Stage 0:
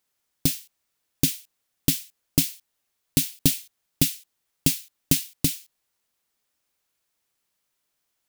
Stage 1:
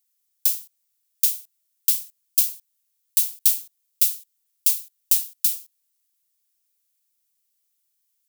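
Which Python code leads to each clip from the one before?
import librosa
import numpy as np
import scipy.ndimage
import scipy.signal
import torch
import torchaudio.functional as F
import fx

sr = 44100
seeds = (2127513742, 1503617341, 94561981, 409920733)

y = np.diff(x, prepend=0.0)
y = y * 10.0 ** (1.5 / 20.0)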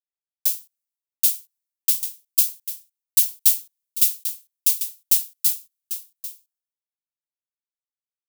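y = x + 10.0 ** (-6.0 / 20.0) * np.pad(x, (int(795 * sr / 1000.0), 0))[:len(x)]
y = fx.band_widen(y, sr, depth_pct=100)
y = y * 10.0 ** (-2.5 / 20.0)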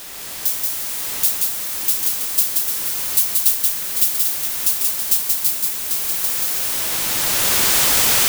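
y = x + 0.5 * 10.0 ** (-22.0 / 20.0) * np.sign(x)
y = fx.recorder_agc(y, sr, target_db=-10.0, rise_db_per_s=9.9, max_gain_db=30)
y = y + 10.0 ** (-3.0 / 20.0) * np.pad(y, (int(180 * sr / 1000.0), 0))[:len(y)]
y = y * 10.0 ** (-1.0 / 20.0)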